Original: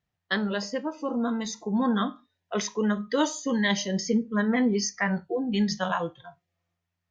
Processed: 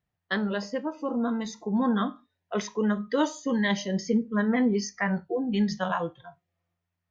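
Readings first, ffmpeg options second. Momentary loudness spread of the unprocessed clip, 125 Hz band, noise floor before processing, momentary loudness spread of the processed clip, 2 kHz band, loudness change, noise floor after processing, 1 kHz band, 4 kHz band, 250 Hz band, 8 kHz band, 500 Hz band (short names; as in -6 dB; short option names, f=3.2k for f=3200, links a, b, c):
6 LU, 0.0 dB, -83 dBFS, 7 LU, -1.5 dB, -0.5 dB, -84 dBFS, -0.5 dB, -4.5 dB, 0.0 dB, n/a, 0.0 dB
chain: -af "highshelf=f=3.7k:g=-9"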